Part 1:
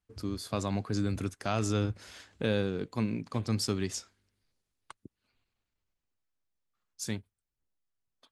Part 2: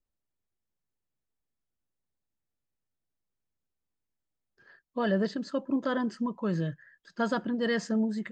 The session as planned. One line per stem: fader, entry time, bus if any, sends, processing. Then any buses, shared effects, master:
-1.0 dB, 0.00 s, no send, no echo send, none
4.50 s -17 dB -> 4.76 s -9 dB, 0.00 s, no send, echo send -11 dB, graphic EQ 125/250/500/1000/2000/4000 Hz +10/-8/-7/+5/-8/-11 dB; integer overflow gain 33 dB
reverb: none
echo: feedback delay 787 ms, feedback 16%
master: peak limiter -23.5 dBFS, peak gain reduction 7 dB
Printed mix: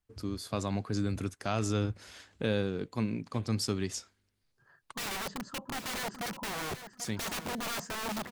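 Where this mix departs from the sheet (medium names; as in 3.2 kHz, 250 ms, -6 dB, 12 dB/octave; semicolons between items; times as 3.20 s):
stem 2 -17.0 dB -> -6.5 dB; master: missing peak limiter -23.5 dBFS, peak gain reduction 7 dB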